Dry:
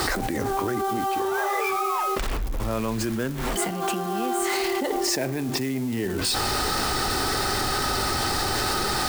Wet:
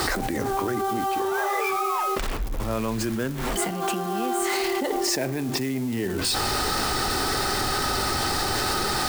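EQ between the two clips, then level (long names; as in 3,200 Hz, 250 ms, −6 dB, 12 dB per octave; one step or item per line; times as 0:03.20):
mains-hum notches 50/100 Hz
0.0 dB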